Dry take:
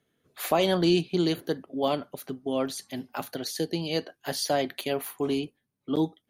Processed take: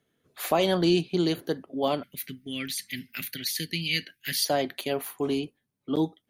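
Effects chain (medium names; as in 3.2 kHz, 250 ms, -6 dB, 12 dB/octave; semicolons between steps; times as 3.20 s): 2.03–4.45 s: FFT filter 210 Hz 0 dB, 890 Hz -29 dB, 2.1 kHz +14 dB, 3 kHz +7 dB, 7 kHz +1 dB, 15 kHz +11 dB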